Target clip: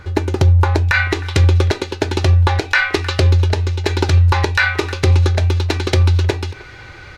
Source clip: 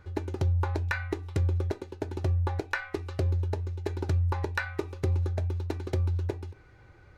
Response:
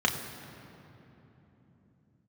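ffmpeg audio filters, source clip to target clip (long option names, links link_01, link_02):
-filter_complex "[0:a]asetnsamples=nb_out_samples=441:pad=0,asendcmd='0.94 equalizer g 14',equalizer=frequency=3700:width=0.39:gain=5,asplit=2[link_01][link_02];[link_02]adelay=310,highpass=300,lowpass=3400,asoftclip=type=hard:threshold=-14dB,volume=-24dB[link_03];[link_01][link_03]amix=inputs=2:normalize=0,alimiter=level_in=17dB:limit=-1dB:release=50:level=0:latency=1,volume=-2dB"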